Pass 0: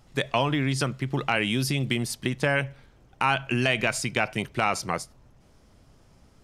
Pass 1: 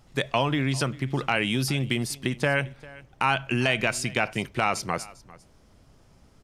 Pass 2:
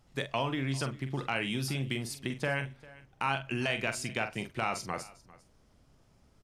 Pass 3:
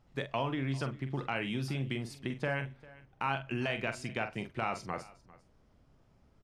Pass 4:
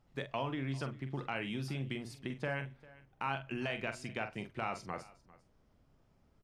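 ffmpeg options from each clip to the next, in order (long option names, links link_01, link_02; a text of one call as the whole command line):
ffmpeg -i in.wav -af "aecho=1:1:398:0.0891" out.wav
ffmpeg -i in.wav -filter_complex "[0:a]asplit=2[link_01][link_02];[link_02]adelay=44,volume=-9dB[link_03];[link_01][link_03]amix=inputs=2:normalize=0,volume=-8dB" out.wav
ffmpeg -i in.wav -af "lowpass=frequency=2400:poles=1,volume=-1dB" out.wav
ffmpeg -i in.wav -af "bandreject=frequency=60:width_type=h:width=6,bandreject=frequency=120:width_type=h:width=6,volume=-3.5dB" out.wav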